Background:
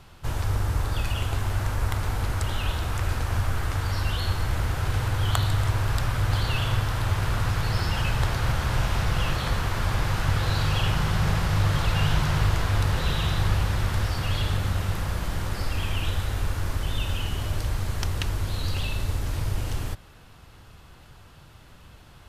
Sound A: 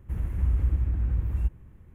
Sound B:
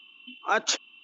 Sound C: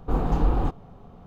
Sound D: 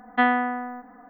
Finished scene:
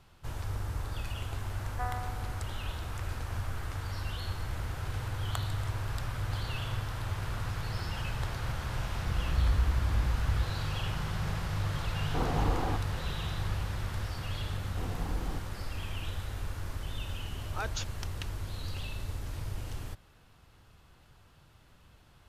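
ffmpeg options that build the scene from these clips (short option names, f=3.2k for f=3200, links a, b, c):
-filter_complex "[3:a]asplit=2[a][b];[0:a]volume=-10dB[c];[4:a]asuperpass=centerf=840:order=4:qfactor=0.94[d];[a]lowshelf=f=280:g=-9.5[e];[b]acrusher=bits=5:mix=0:aa=0.5[f];[d]atrim=end=1.09,asetpts=PTS-STARTPTS,volume=-15dB,afade=t=in:d=0.004:c=hsin,afade=t=out:st=1.086:d=0.004:c=hsin,adelay=1610[g];[1:a]atrim=end=1.94,asetpts=PTS-STARTPTS,volume=-3.5dB,afade=t=in:d=0.004:c=hsin,afade=t=out:st=1.936:d=0.004:c=hsin,adelay=8950[h];[e]atrim=end=1.26,asetpts=PTS-STARTPTS,volume=-2dB,afade=t=in:d=0.004:c=hsin,afade=t=out:st=1.256:d=0.004:c=hsin,adelay=12060[i];[f]atrim=end=1.26,asetpts=PTS-STARTPTS,volume=-14.5dB,afade=t=in:d=0.004:c=hsin,afade=t=out:st=1.256:d=0.004:c=hsin,adelay=14690[j];[2:a]atrim=end=1.03,asetpts=PTS-STARTPTS,volume=-12.5dB,afade=t=in:d=0.004:c=hsin,afade=t=out:st=1.026:d=0.004:c=hsin,adelay=17080[k];[c][g][h][i][j][k]amix=inputs=6:normalize=0"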